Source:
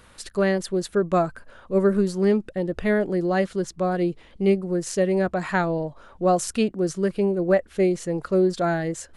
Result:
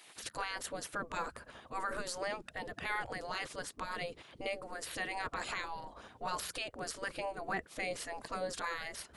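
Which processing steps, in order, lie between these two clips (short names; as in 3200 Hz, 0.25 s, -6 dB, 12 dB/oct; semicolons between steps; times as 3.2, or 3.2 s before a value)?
spectral gate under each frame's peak -15 dB weak; limiter -28 dBFS, peak gain reduction 9.5 dB; gain +1 dB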